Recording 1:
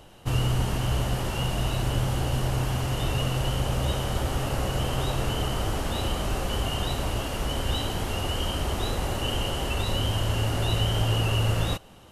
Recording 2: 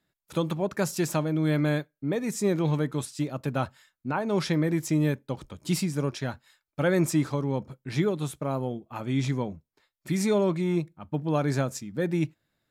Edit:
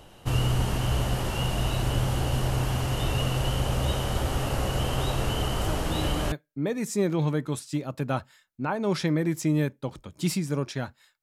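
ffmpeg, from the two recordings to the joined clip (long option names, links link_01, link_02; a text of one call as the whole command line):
ffmpeg -i cue0.wav -i cue1.wav -filter_complex "[1:a]asplit=2[link_01][link_02];[0:a]apad=whole_dur=11.22,atrim=end=11.22,atrim=end=6.322[link_03];[link_02]atrim=start=1.778:end=6.68[link_04];[link_01]atrim=start=1.07:end=1.78,asetpts=PTS-STARTPTS,volume=-9dB,afade=type=in:duration=0.004:curve=hsin,afade=type=out:start_time=0.706:duration=0.004:curve=hsin,adelay=247401S[link_05];[link_03][link_04]acrossfade=duration=0.004:curve1=hsin:curve2=hsin[link_06];[link_06][link_05]amix=inputs=2:normalize=0" out.wav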